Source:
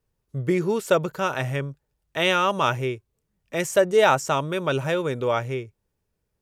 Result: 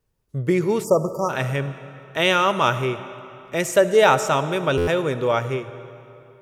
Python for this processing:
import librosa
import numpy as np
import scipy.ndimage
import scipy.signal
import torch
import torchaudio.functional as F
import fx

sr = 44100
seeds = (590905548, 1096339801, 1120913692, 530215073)

y = fx.rev_freeverb(x, sr, rt60_s=2.8, hf_ratio=0.8, predelay_ms=25, drr_db=12.0)
y = fx.spec_erase(y, sr, start_s=0.84, length_s=0.46, low_hz=1300.0, high_hz=4600.0)
y = fx.buffer_glitch(y, sr, at_s=(4.77,), block=512, repeats=8)
y = F.gain(torch.from_numpy(y), 2.5).numpy()